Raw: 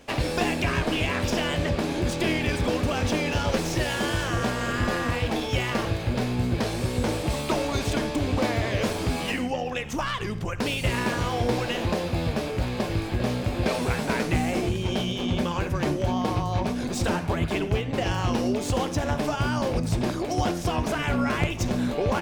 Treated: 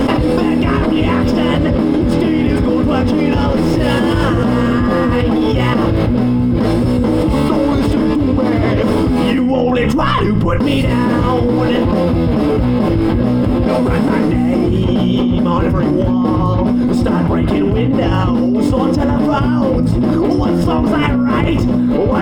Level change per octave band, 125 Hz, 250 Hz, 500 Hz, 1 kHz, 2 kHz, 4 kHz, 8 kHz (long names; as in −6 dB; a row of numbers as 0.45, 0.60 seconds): +11.5 dB, +16.0 dB, +11.5 dB, +9.5 dB, +5.0 dB, +4.5 dB, can't be measured